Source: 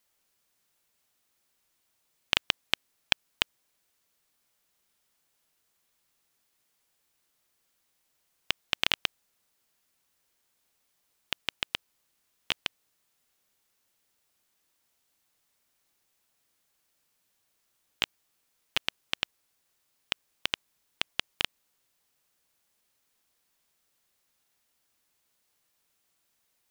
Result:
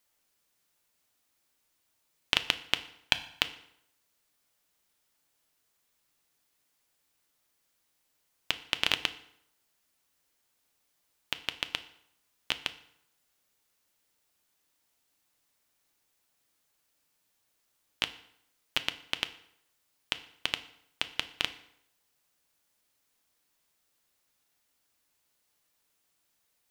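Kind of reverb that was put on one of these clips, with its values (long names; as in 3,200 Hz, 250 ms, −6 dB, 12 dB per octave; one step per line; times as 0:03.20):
feedback delay network reverb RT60 0.74 s, low-frequency decay 0.95×, high-frequency decay 0.8×, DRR 10 dB
level −1 dB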